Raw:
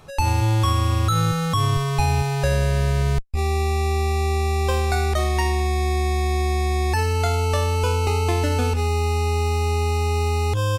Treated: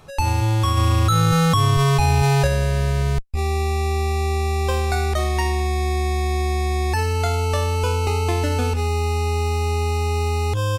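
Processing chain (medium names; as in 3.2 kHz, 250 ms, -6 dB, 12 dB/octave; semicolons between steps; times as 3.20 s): 0.77–2.47 s: level flattener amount 100%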